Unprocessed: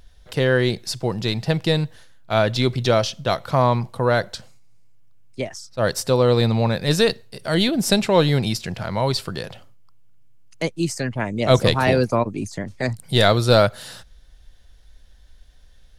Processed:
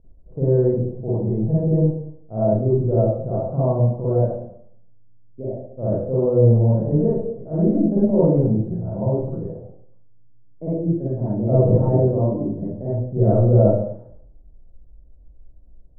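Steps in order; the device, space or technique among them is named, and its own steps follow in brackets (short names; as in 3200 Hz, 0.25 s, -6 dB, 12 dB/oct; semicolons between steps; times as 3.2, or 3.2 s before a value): next room (LPF 550 Hz 24 dB/oct; reverb RT60 0.65 s, pre-delay 40 ms, DRR -10 dB); gain -7 dB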